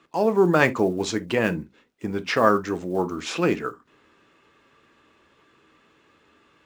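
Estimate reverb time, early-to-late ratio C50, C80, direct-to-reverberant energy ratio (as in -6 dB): no single decay rate, 21.0 dB, 41.5 dB, 10.5 dB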